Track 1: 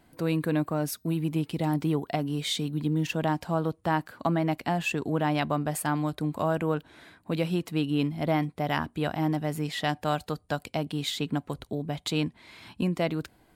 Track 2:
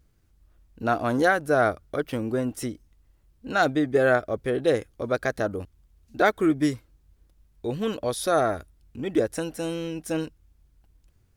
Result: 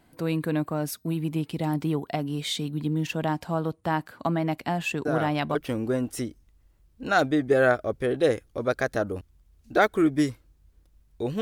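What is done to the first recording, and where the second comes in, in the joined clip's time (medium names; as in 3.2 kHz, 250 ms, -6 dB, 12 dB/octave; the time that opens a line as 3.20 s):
track 1
5.05 s: add track 2 from 1.49 s 0.50 s -8 dB
5.55 s: go over to track 2 from 1.99 s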